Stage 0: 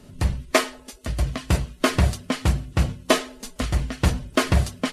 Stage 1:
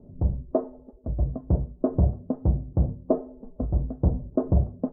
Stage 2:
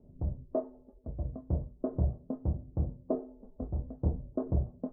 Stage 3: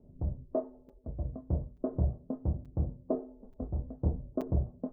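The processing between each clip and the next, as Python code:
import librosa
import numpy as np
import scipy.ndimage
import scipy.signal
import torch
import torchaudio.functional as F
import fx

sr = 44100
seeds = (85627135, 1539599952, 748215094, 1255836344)

y1 = scipy.signal.sosfilt(scipy.signal.cheby2(4, 60, 2300.0, 'lowpass', fs=sr, output='sos'), x)
y1 = F.gain(torch.from_numpy(y1), -1.5).numpy()
y2 = fx.chorus_voices(y1, sr, voices=6, hz=0.57, base_ms=25, depth_ms=1.8, mix_pct=30)
y2 = F.gain(torch.from_numpy(y2), -6.5).numpy()
y3 = fx.buffer_crackle(y2, sr, first_s=0.89, period_s=0.88, block=256, kind='zero')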